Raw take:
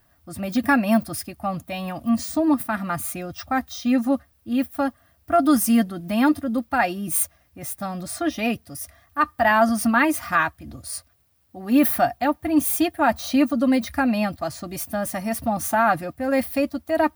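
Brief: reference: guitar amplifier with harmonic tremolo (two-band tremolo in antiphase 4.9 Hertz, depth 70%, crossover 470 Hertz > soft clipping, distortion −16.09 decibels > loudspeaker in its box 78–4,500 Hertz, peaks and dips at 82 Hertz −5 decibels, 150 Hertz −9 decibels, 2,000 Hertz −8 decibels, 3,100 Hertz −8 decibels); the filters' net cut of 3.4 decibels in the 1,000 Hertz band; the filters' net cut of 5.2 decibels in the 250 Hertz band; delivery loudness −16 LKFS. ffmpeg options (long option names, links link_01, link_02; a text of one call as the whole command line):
ffmpeg -i in.wav -filter_complex "[0:a]equalizer=frequency=250:width_type=o:gain=-5,equalizer=frequency=1000:width_type=o:gain=-4,acrossover=split=470[link_01][link_02];[link_01]aeval=exprs='val(0)*(1-0.7/2+0.7/2*cos(2*PI*4.9*n/s))':channel_layout=same[link_03];[link_02]aeval=exprs='val(0)*(1-0.7/2-0.7/2*cos(2*PI*4.9*n/s))':channel_layout=same[link_04];[link_03][link_04]amix=inputs=2:normalize=0,asoftclip=threshold=-19dB,highpass=78,equalizer=frequency=82:width_type=q:width=4:gain=-5,equalizer=frequency=150:width_type=q:width=4:gain=-9,equalizer=frequency=2000:width_type=q:width=4:gain=-8,equalizer=frequency=3100:width_type=q:width=4:gain=-8,lowpass=frequency=4500:width=0.5412,lowpass=frequency=4500:width=1.3066,volume=16dB" out.wav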